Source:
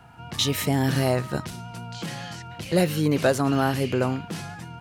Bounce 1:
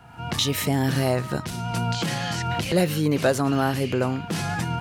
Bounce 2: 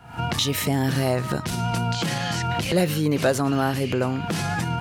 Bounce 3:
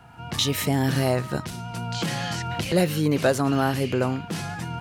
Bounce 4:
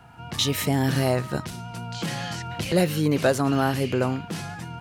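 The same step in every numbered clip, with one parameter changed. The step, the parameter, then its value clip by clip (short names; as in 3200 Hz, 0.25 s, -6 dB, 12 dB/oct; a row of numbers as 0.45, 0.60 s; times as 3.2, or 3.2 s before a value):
recorder AGC, rising by: 33, 85, 13, 5.3 dB/s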